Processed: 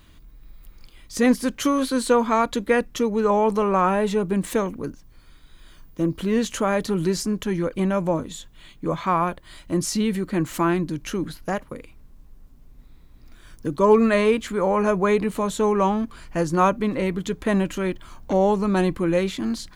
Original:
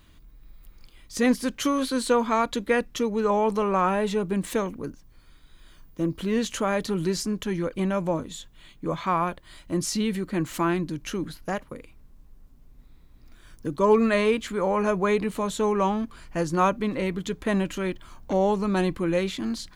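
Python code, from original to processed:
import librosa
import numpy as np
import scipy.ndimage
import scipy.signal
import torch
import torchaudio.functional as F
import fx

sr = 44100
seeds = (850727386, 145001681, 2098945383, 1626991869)

y = fx.dynamic_eq(x, sr, hz=3600.0, q=0.74, threshold_db=-43.0, ratio=4.0, max_db=-3)
y = y * 10.0 ** (3.5 / 20.0)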